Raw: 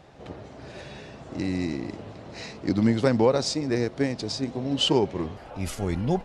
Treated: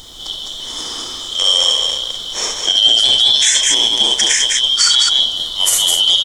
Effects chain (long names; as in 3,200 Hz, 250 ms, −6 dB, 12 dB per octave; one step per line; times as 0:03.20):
band-splitting scrambler in four parts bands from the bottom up 2413
background noise brown −51 dBFS
high shelf with overshoot 5,100 Hz +11 dB, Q 1.5
in parallel at −3 dB: speech leveller within 4 dB 0.5 s
on the sum: bass and treble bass −9 dB, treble +1 dB
loudspeakers that aren't time-aligned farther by 11 metres −10 dB, 24 metres −7 dB, 71 metres −4 dB
boost into a limiter +9 dB
level −1 dB